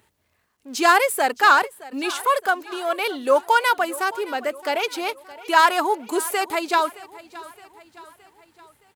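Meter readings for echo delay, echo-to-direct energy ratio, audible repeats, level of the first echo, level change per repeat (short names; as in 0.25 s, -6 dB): 0.618 s, -17.5 dB, 3, -19.0 dB, -6.0 dB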